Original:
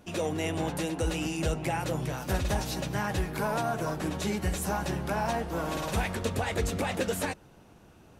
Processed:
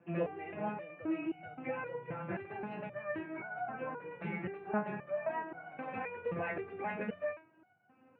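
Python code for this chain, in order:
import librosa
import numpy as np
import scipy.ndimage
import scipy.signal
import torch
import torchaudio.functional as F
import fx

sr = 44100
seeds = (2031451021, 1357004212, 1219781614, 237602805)

y = scipy.signal.sosfilt(scipy.signal.cheby1(5, 1.0, [100.0, 2500.0], 'bandpass', fs=sr, output='sos'), x)
y = fx.vibrato(y, sr, rate_hz=6.4, depth_cents=66.0)
y = fx.resonator_held(y, sr, hz=3.8, low_hz=170.0, high_hz=740.0)
y = y * 10.0 ** (8.0 / 20.0)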